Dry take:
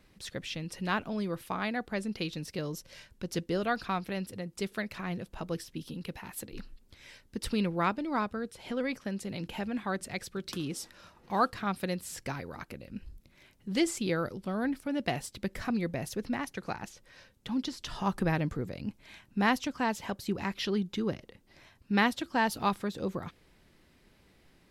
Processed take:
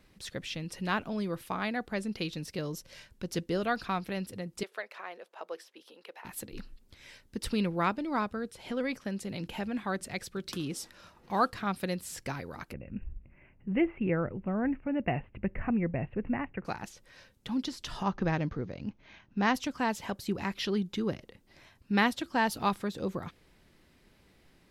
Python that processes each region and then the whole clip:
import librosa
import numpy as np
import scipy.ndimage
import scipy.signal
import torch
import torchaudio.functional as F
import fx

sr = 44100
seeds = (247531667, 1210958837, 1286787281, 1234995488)

y = fx.chain(x, sr, fx.highpass(hz=470.0, slope=24),
    fx.high_shelf(hz=3500.0, db=-12.0), at=(4.63, 6.25))
y = fx.chain(y, sr, fx.cheby_ripple(hz=2800.0, ripple_db=3),
    fx.low_shelf(hz=180.0, db=11.5),
    fx.hum_notches(base_hz=50, count=2), at=(12.73, 16.65))
y = fx.chain(y, sr, fx.median_filter(points=9),
    fx.cheby1_lowpass(hz=6600.0, order=10), at=(18.03, 19.55))